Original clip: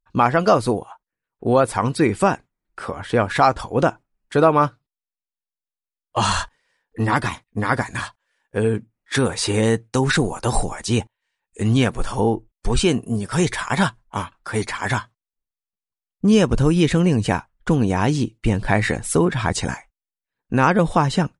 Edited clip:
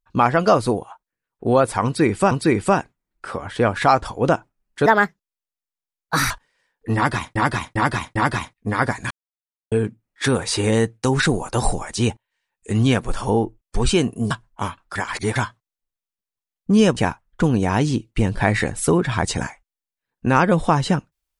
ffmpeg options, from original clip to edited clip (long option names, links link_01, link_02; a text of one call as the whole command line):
ffmpeg -i in.wav -filter_complex "[0:a]asplit=13[link_01][link_02][link_03][link_04][link_05][link_06][link_07][link_08][link_09][link_10][link_11][link_12][link_13];[link_01]atrim=end=2.312[link_14];[link_02]atrim=start=1.848:end=4.404[link_15];[link_03]atrim=start=4.4:end=6.41,asetpts=PTS-STARTPTS,asetrate=61299,aresample=44100[link_16];[link_04]atrim=start=6.406:end=7.462[link_17];[link_05]atrim=start=7.058:end=7.462[link_18];[link_06]atrim=start=7.058:end=7.462[link_19];[link_07]atrim=start=7.058:end=8.01,asetpts=PTS-STARTPTS,afade=type=out:start_time=0.948:duration=0.004:curve=hsin[link_20];[link_08]atrim=start=8.01:end=8.62,asetpts=PTS-STARTPTS,volume=0[link_21];[link_09]atrim=start=8.62:end=13.212,asetpts=PTS-STARTPTS,afade=type=in:duration=0.004:curve=hsin[link_22];[link_10]atrim=start=13.848:end=14.502[link_23];[link_11]atrim=start=14.498:end=14.902,asetpts=PTS-STARTPTS,areverse[link_24];[link_12]atrim=start=14.898:end=16.512[link_25];[link_13]atrim=start=17.238[link_26];[link_14][link_15]acrossfade=duration=0.004:curve1=hsin:curve2=hsin[link_27];[link_27][link_16]acrossfade=duration=0.004:curve1=hsin:curve2=hsin[link_28];[link_28][link_17]acrossfade=duration=0.004:curve1=hsin:curve2=hsin[link_29];[link_29][link_18]acrossfade=duration=0.004:curve1=hsin:curve2=hsin[link_30];[link_30][link_19]acrossfade=duration=0.004:curve1=hsin:curve2=hsin[link_31];[link_20][link_21][link_22]concat=n=3:v=0:a=1[link_32];[link_31][link_32]acrossfade=duration=0.004:curve1=hsin:curve2=hsin[link_33];[link_33][link_23]acrossfade=duration=0.004:curve1=hsin:curve2=hsin[link_34];[link_34][link_24]acrossfade=duration=0.004:curve1=hsin:curve2=hsin[link_35];[link_35][link_25]acrossfade=duration=0.004:curve1=hsin:curve2=hsin[link_36];[link_36][link_26]acrossfade=duration=0.004:curve1=hsin:curve2=hsin" out.wav